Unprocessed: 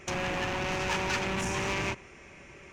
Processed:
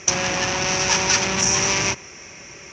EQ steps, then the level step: HPF 80 Hz; synth low-pass 5800 Hz, resonance Q 8.1; bell 280 Hz -2 dB 1.9 oct; +8.0 dB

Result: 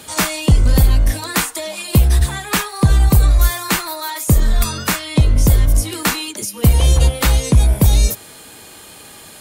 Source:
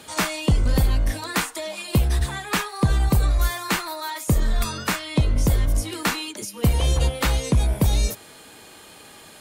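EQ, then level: bell 68 Hz +4.5 dB 2.5 oct; high shelf 6900 Hz +8 dB; +4.0 dB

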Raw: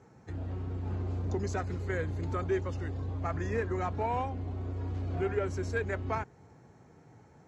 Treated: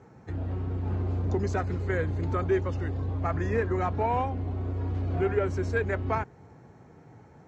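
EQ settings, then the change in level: high shelf 5500 Hz -11 dB; +5.0 dB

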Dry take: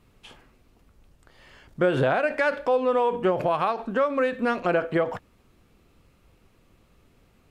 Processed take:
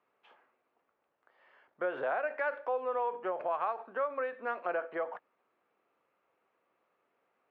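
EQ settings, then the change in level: BPF 270–4200 Hz; three-band isolator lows -16 dB, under 480 Hz, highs -18 dB, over 2100 Hz; -7.0 dB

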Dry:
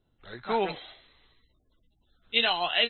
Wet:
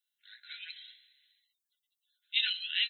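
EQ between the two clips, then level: brick-wall FIR high-pass 1400 Hz; differentiator; +3.0 dB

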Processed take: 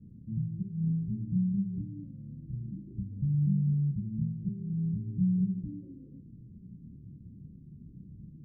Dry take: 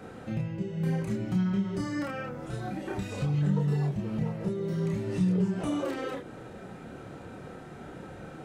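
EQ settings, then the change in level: inverse Chebyshev low-pass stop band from 710 Hz, stop band 60 dB; 0.0 dB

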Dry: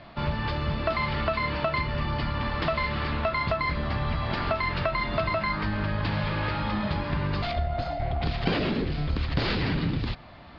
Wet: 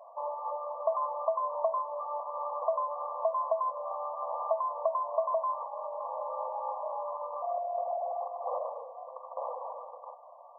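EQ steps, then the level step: brick-wall FIR high-pass 480 Hz; brick-wall FIR low-pass 1200 Hz; 0.0 dB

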